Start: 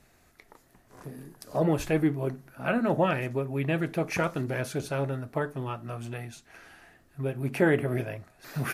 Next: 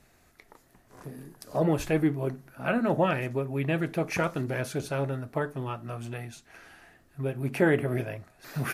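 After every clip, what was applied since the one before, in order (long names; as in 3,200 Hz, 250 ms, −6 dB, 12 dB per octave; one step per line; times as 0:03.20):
no processing that can be heard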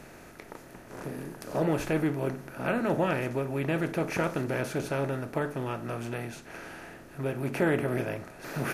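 compressor on every frequency bin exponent 0.6
level −5 dB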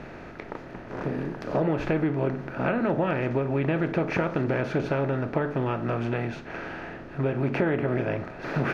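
downward compressor, threshold −29 dBFS, peak gain reduction 8 dB
high-frequency loss of the air 240 metres
level +8.5 dB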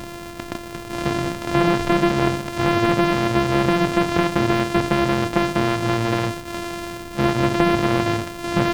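samples sorted by size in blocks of 128 samples
slew-rate limiting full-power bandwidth 250 Hz
level +7.5 dB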